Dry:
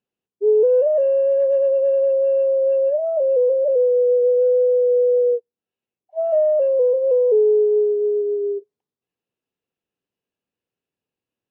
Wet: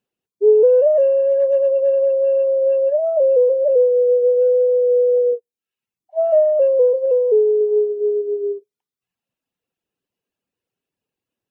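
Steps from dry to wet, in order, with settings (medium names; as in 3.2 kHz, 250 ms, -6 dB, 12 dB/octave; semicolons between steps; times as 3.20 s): reverb removal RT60 0.85 s; 7.05–7.61 s: dynamic bell 810 Hz, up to -4 dB, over -30 dBFS, Q 0.85; trim +4.5 dB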